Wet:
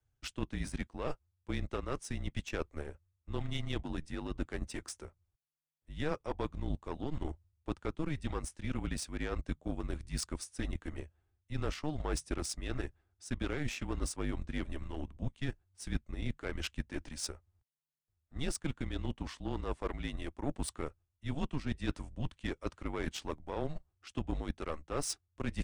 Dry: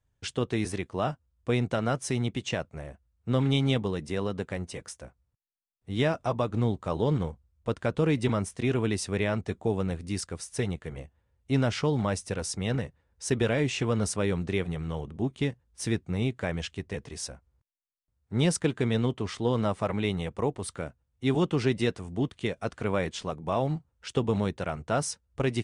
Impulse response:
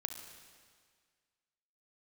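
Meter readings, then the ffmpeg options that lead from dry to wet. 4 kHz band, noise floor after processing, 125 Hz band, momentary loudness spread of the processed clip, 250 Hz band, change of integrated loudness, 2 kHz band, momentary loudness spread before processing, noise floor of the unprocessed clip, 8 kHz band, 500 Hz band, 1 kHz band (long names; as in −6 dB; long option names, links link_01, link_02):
−8.5 dB, −83 dBFS, −11.0 dB, 7 LU, −10.0 dB, −10.0 dB, −8.5 dB, 10 LU, −76 dBFS, −6.0 dB, −12.5 dB, −10.0 dB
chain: -af "areverse,acompressor=threshold=-34dB:ratio=6,areverse,afreqshift=-150,acontrast=70,aeval=exprs='0.178*(cos(1*acos(clip(val(0)/0.178,-1,1)))-cos(1*PI/2))+0.0126*(cos(3*acos(clip(val(0)/0.178,-1,1)))-cos(3*PI/2))+0.01*(cos(7*acos(clip(val(0)/0.178,-1,1)))-cos(7*PI/2))':channel_layout=same,volume=-3dB"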